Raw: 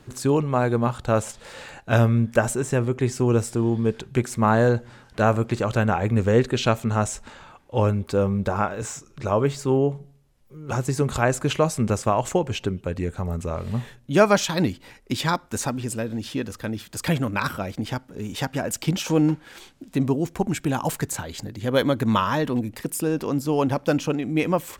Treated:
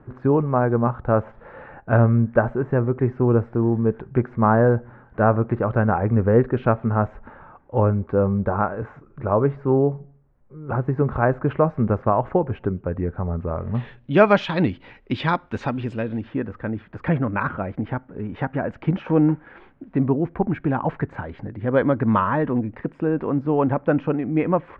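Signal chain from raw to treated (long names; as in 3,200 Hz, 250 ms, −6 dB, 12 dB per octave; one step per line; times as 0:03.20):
low-pass filter 1,600 Hz 24 dB per octave, from 0:13.75 3,100 Hz, from 0:16.21 1,900 Hz
level +2 dB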